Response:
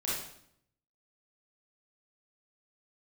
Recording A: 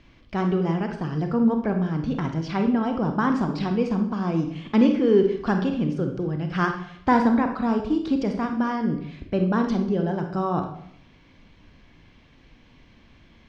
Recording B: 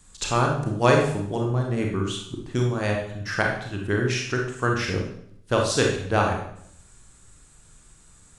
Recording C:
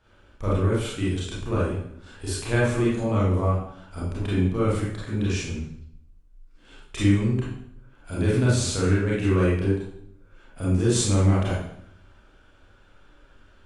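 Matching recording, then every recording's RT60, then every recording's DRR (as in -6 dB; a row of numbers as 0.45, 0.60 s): C; 0.70, 0.70, 0.70 s; 4.5, 0.0, -8.0 dB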